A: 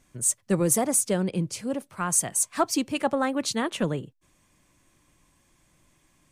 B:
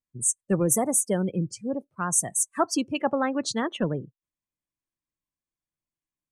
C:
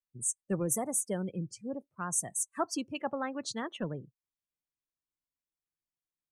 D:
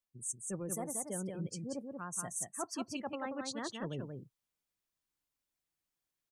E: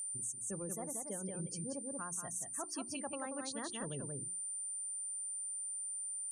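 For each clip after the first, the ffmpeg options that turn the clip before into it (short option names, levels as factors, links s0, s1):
-af "afftdn=nr=33:nf=-34"
-af "adynamicequalizer=threshold=0.0158:dfrequency=340:dqfactor=0.77:tfrequency=340:tqfactor=0.77:attack=5:release=100:ratio=0.375:range=2:mode=cutabove:tftype=bell,volume=0.398"
-af "areverse,acompressor=threshold=0.00708:ratio=4,areverse,aecho=1:1:183:0.596,volume=1.58"
-af "bandreject=f=60:t=h:w=6,bandreject=f=120:t=h:w=6,bandreject=f=180:t=h:w=6,bandreject=f=240:t=h:w=6,bandreject=f=300:t=h:w=6,bandreject=f=360:t=h:w=6,aeval=exprs='val(0)+0.00708*sin(2*PI*9100*n/s)':c=same,acompressor=threshold=0.00708:ratio=6,volume=1.68"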